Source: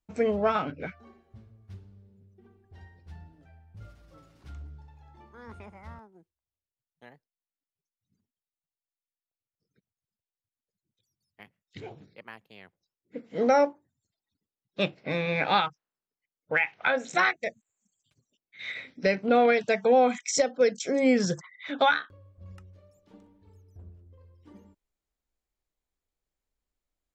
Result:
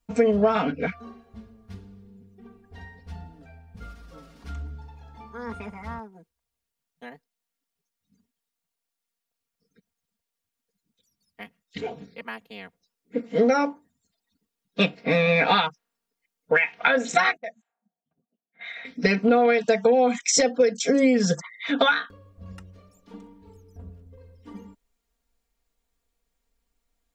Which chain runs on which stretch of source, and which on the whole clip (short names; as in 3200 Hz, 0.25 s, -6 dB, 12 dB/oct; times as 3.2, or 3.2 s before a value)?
17.37–18.85 low-pass opened by the level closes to 390 Hz, open at -32.5 dBFS + compressor 2.5:1, threshold -47 dBFS + speaker cabinet 250–6200 Hz, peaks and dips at 270 Hz -10 dB, 450 Hz -9 dB, 750 Hz +10 dB, 1600 Hz +5 dB, 2500 Hz -3 dB, 4800 Hz -9 dB
whole clip: comb 4.3 ms, depth 100%; compressor 12:1, threshold -22 dBFS; gain +6.5 dB